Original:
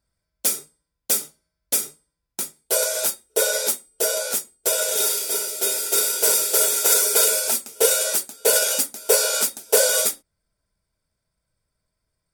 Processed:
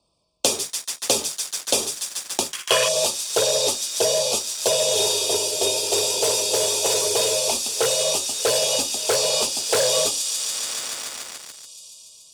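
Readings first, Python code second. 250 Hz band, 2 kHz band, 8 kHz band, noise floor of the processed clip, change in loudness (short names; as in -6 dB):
+5.0 dB, -1.5 dB, -1.0 dB, -49 dBFS, -1.5 dB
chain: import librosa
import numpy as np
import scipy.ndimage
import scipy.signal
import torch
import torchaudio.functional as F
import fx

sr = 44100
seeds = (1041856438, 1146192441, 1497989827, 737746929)

p1 = fx.octave_divider(x, sr, octaves=2, level_db=-2.0)
p2 = scipy.signal.sosfilt(scipy.signal.cheby1(4, 1.0, [1200.0, 2500.0], 'bandstop', fs=sr, output='sos'), p1)
p3 = fx.air_absorb(p2, sr, metres=65.0)
p4 = fx.echo_wet_highpass(p3, sr, ms=143, feedback_pct=79, hz=3800.0, wet_db=-8.0)
p5 = fx.leveller(p4, sr, passes=3)
p6 = (np.mod(10.0 ** (8.5 / 20.0) * p5 + 1.0, 2.0) - 1.0) / 10.0 ** (8.5 / 20.0)
p7 = p5 + (p6 * 10.0 ** (-10.0 / 20.0))
p8 = fx.spec_box(p7, sr, start_s=2.52, length_s=0.36, low_hz=1000.0, high_hz=3400.0, gain_db=12)
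p9 = fx.rider(p8, sr, range_db=4, speed_s=2.0)
p10 = fx.highpass(p9, sr, hz=400.0, slope=6)
p11 = fx.high_shelf(p10, sr, hz=12000.0, db=-9.5)
p12 = fx.band_squash(p11, sr, depth_pct=70)
y = p12 * 10.0 ** (-5.0 / 20.0)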